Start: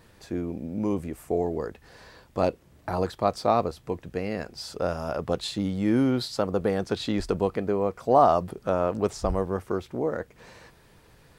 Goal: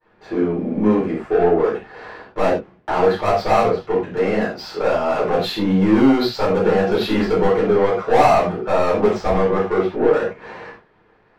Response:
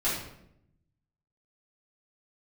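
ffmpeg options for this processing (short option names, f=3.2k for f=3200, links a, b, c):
-filter_complex "[0:a]asplit=2[a][b];[b]highpass=f=720:p=1,volume=25dB,asoftclip=type=tanh:threshold=-6dB[c];[a][c]amix=inputs=2:normalize=0,lowpass=f=1.8k:p=1,volume=-6dB,adynamicsmooth=sensitivity=2.5:basefreq=2.6k,agate=range=-33dB:threshold=-36dB:ratio=3:detection=peak[d];[1:a]atrim=start_sample=2205,atrim=end_sample=6174,asetrate=52920,aresample=44100[e];[d][e]afir=irnorm=-1:irlink=0,volume=-7dB"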